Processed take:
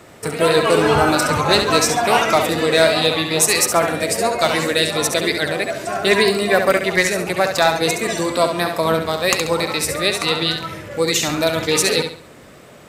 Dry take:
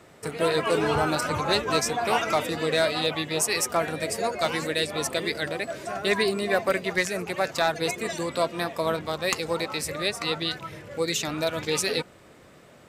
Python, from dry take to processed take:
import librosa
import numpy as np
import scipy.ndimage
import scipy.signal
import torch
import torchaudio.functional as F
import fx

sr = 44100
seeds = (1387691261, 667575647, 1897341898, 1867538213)

p1 = fx.high_shelf(x, sr, hz=9500.0, db=4.0)
p2 = p1 + fx.echo_feedback(p1, sr, ms=68, feedback_pct=32, wet_db=-7, dry=0)
y = p2 * 10.0 ** (8.0 / 20.0)